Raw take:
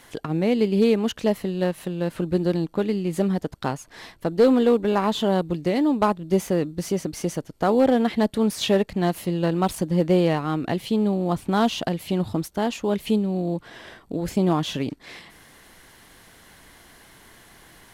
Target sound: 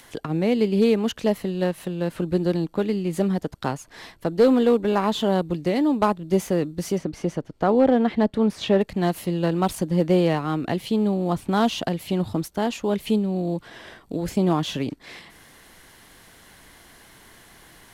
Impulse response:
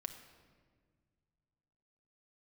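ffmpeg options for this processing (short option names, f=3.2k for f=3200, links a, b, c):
-filter_complex "[0:a]asettb=1/sr,asplit=3[a][b][c];[a]atrim=end=6.984[d];[b]atrim=start=6.98:end=8.81,asetpts=PTS-STARTPTS,afade=t=in:d=0.004:c=qsin,afade=t=out:st=1.826:d=0.004:c=qsin,aemphasis=mode=reproduction:type=75fm[e];[c]atrim=start=8.806[f];[d][e]acrossfade=d=0.004:c1=hsin:c2=qsin[g];[g][f]acrossfade=d=0.004:c1=qsin:c2=hsin,acrossover=split=370|2400[h][i][j];[j]acompressor=mode=upward:threshold=-51dB:ratio=2.5[k];[h][i][k]amix=inputs=3:normalize=0"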